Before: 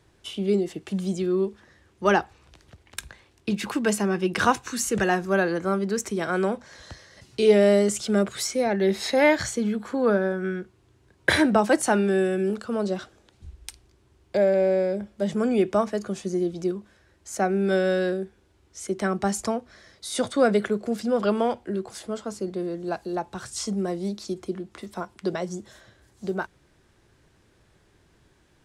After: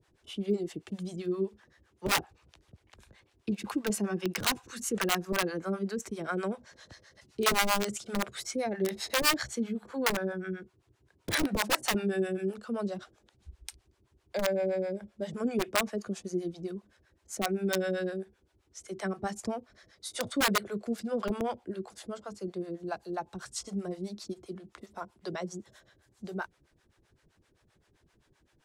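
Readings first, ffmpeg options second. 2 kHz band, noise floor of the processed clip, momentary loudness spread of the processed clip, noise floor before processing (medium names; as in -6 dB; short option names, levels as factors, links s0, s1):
-5.5 dB, -71 dBFS, 15 LU, -62 dBFS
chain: -filter_complex "[0:a]aeval=exprs='(mod(4.47*val(0)+1,2)-1)/4.47':c=same,acrossover=split=520[s0][s1];[s0]aeval=exprs='val(0)*(1-1/2+1/2*cos(2*PI*7.7*n/s))':c=same[s2];[s1]aeval=exprs='val(0)*(1-1/2-1/2*cos(2*PI*7.7*n/s))':c=same[s3];[s2][s3]amix=inputs=2:normalize=0,volume=0.708"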